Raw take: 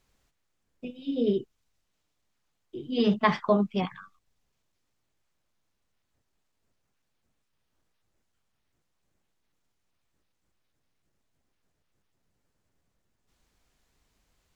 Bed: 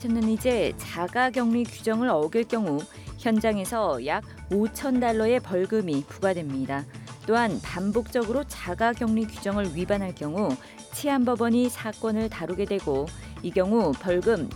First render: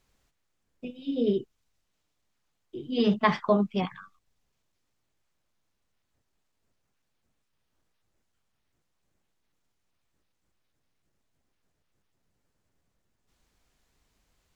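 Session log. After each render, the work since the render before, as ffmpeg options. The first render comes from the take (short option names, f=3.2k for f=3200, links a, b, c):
-af anull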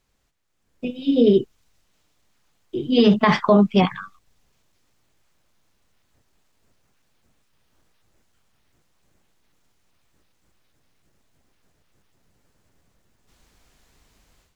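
-af "alimiter=limit=-17.5dB:level=0:latency=1:release=67,dynaudnorm=f=450:g=3:m=12dB"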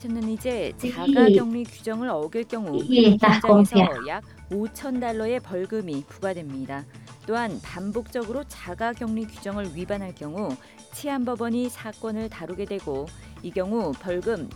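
-filter_complex "[1:a]volume=-3.5dB[a];[0:a][a]amix=inputs=2:normalize=0"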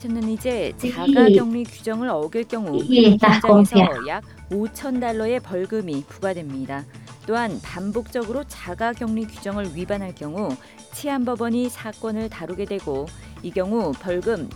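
-af "volume=3.5dB,alimiter=limit=-3dB:level=0:latency=1"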